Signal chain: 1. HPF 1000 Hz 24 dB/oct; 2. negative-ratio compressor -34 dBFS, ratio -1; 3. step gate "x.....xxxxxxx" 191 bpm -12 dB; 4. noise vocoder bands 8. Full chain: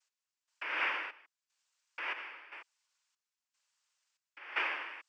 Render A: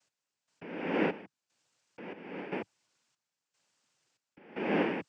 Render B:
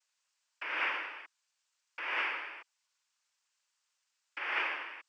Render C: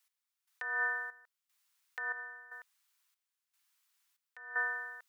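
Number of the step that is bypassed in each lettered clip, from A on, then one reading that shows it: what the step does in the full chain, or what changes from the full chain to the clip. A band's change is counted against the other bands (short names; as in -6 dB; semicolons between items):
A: 1, 250 Hz band +27.0 dB; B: 3, crest factor change -2.0 dB; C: 4, crest factor change -4.0 dB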